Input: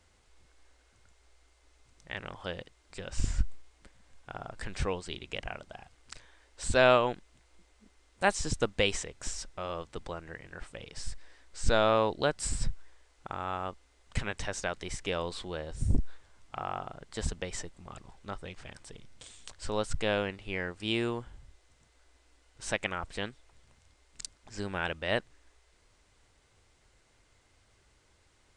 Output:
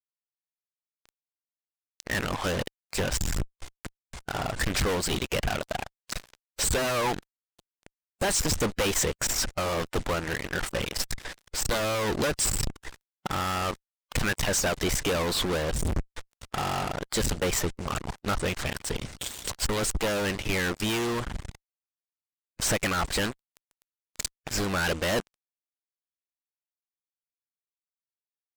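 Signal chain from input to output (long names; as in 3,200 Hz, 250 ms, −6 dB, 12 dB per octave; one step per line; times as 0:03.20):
fuzz pedal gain 48 dB, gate −50 dBFS
harmonic and percussive parts rebalanced harmonic −6 dB
level −8.5 dB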